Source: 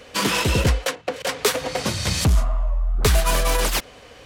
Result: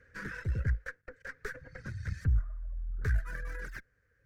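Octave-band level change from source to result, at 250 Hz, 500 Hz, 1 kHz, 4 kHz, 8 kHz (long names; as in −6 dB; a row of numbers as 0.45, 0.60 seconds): −19.5, −24.5, −26.0, −35.5, −34.0 decibels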